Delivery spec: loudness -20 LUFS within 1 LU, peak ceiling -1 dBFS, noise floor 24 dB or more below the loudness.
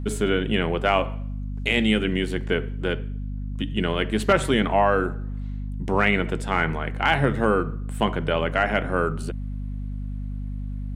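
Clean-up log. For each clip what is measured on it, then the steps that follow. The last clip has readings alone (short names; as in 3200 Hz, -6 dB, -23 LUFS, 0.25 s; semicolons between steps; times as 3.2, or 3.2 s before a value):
hum 50 Hz; harmonics up to 250 Hz; hum level -28 dBFS; loudness -24.5 LUFS; peak -5.0 dBFS; loudness target -20.0 LUFS
-> notches 50/100/150/200/250 Hz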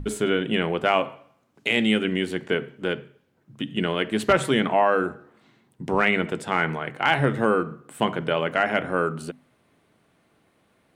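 hum none; loudness -24.0 LUFS; peak -6.0 dBFS; loudness target -20.0 LUFS
-> gain +4 dB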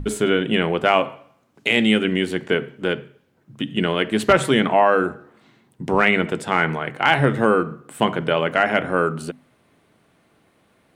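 loudness -20.0 LUFS; peak -2.0 dBFS; noise floor -61 dBFS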